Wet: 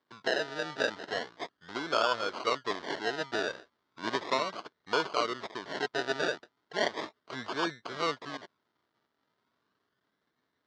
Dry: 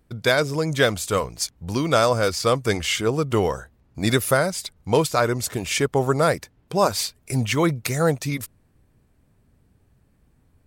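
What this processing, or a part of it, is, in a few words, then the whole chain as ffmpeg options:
circuit-bent sampling toy: -af "acrusher=samples=32:mix=1:aa=0.000001:lfo=1:lforange=19.2:lforate=0.36,highpass=530,equalizer=frequency=530:width_type=q:width=4:gain=-7,equalizer=frequency=790:width_type=q:width=4:gain=-7,equalizer=frequency=2500:width_type=q:width=4:gain=-10,lowpass=frequency=4800:width=0.5412,lowpass=frequency=4800:width=1.3066,volume=-4dB"

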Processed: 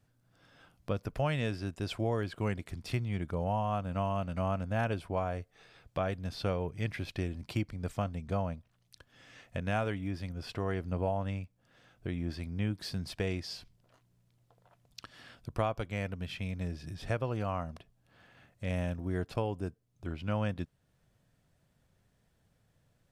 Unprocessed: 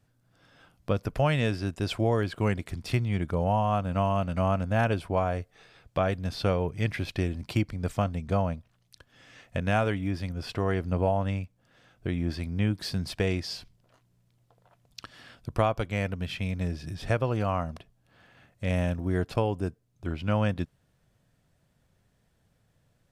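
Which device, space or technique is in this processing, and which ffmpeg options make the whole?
parallel compression: -filter_complex "[0:a]asplit=2[link_01][link_02];[link_02]acompressor=threshold=-45dB:ratio=6,volume=-3.5dB[link_03];[link_01][link_03]amix=inputs=2:normalize=0,volume=-7dB"

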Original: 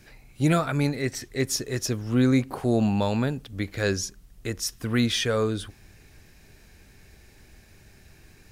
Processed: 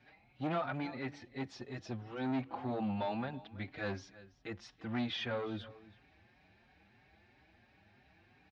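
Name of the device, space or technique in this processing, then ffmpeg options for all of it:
barber-pole flanger into a guitar amplifier: -filter_complex "[0:a]asettb=1/sr,asplit=3[link_01][link_02][link_03];[link_01]atrim=end=1.134[link_04];[link_02]atrim=start=1.13:end=1.98,asetpts=PTS-STARTPTS,afade=type=in:duration=0.004:curve=qsin,afade=type=out:start_time=0.846:duration=0.004:curve=qsin,equalizer=frequency=1600:width=0.55:gain=-3.5[link_05];[link_03]atrim=start=1.976[link_06];[link_04][link_05]acrossfade=duration=0.004:curve1=hsin:curve2=qsin[link_07];[link_07][link_06]acrossfade=duration=0.004:curve1=qsin:curve2=hsin,aecho=1:1:330:0.0891,asplit=2[link_08][link_09];[link_09]adelay=5.1,afreqshift=3[link_10];[link_08][link_10]amix=inputs=2:normalize=1,asoftclip=type=tanh:threshold=-23.5dB,highpass=110,equalizer=frequency=150:width_type=q:width=4:gain=-6,equalizer=frequency=420:width_type=q:width=4:gain=-7,equalizer=frequency=780:width_type=q:width=4:gain=8,lowpass=frequency=3700:width=0.5412,lowpass=frequency=3700:width=1.3066,volume=-6dB"

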